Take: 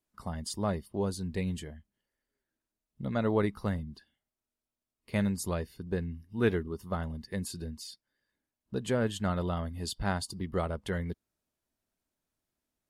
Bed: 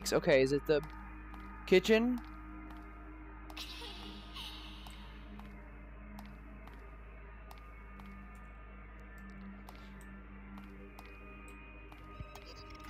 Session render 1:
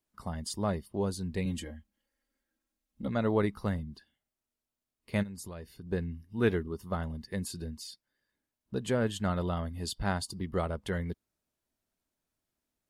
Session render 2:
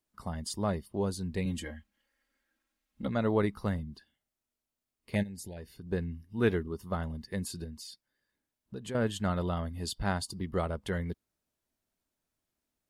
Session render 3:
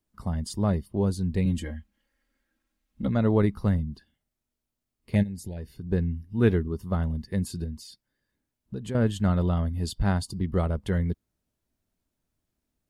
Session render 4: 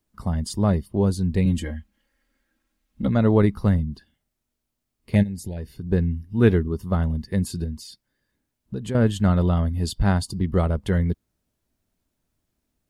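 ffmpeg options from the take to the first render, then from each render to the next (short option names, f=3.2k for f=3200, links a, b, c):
-filter_complex "[0:a]asettb=1/sr,asplit=3[a][b][c];[a]atrim=end=1.454[d];[b]atrim=start=1.45:end=3.08,asetpts=PTS-STARTPTS,afade=t=in:d=0.004:c=qsin,afade=t=out:st=1.626:d=0.004:c=qsin,aecho=1:1:3.7:0.84,atrim=end_sample=71883[e];[c]atrim=start=3.076[f];[d][e]acrossfade=d=0.004:c1=hsin:c2=qsin[g];[g][f]acrossfade=d=0.004:c1=qsin:c2=hsin,asplit=3[h][i][j];[h]afade=t=out:st=5.22:d=0.02[k];[i]acompressor=threshold=-41dB:ratio=4:attack=3.2:release=140:knee=1:detection=peak,afade=t=in:st=5.22:d=0.02,afade=t=out:st=5.89:d=0.02[l];[j]afade=t=in:st=5.89:d=0.02[m];[k][l][m]amix=inputs=3:normalize=0"
-filter_complex "[0:a]asettb=1/sr,asplit=3[a][b][c];[a]atrim=end=1.644[d];[b]atrim=start=1.64:end=3.07,asetpts=PTS-STARTPTS,afade=t=in:d=0.004:c=qsin,afade=t=out:st=1.426:d=0.004:c=qsin,equalizer=f=1.9k:t=o:w=2.4:g=8.5[e];[c]atrim=start=3.066[f];[d][e]acrossfade=d=0.004:c1=hsin:c2=qsin[g];[g][f]acrossfade=d=0.004:c1=qsin:c2=hsin,asettb=1/sr,asplit=3[h][i][j];[h]atrim=end=5.154[k];[i]atrim=start=5.15:end=5.57,asetpts=PTS-STARTPTS,afade=t=in:d=0.004:c=qsin,afade=t=out:st=0.416:d=0.004:c=qsin,asuperstop=centerf=1200:order=12:qfactor=1.7[l];[j]atrim=start=5.566[m];[k][l]acrossfade=d=0.004:c1=hsin:c2=qsin[n];[n][m]acrossfade=d=0.004:c1=qsin:c2=hsin,asettb=1/sr,asplit=3[o][p][q];[o]atrim=end=7.644[r];[p]atrim=start=7.64:end=8.95,asetpts=PTS-STARTPTS,afade=t=in:d=0.004:c=qsin,afade=t=out:st=1.306:d=0.004:c=qsin,acompressor=threshold=-42dB:ratio=2:attack=3.2:release=140:knee=1:detection=peak[s];[q]atrim=start=8.946[t];[r][s]acrossfade=d=0.004:c1=hsin:c2=qsin[u];[u][t]acrossfade=d=0.004:c1=qsin:c2=hsin"
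-af "lowshelf=f=300:g=11"
-af "volume=4.5dB"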